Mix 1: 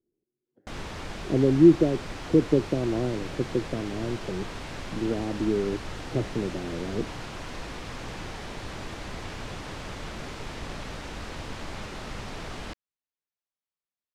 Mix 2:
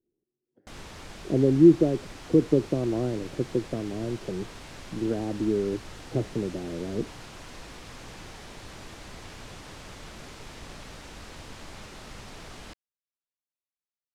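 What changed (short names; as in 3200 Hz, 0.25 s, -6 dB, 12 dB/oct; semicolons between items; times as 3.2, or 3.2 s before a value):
background -7.0 dB; master: add high shelf 5500 Hz +9 dB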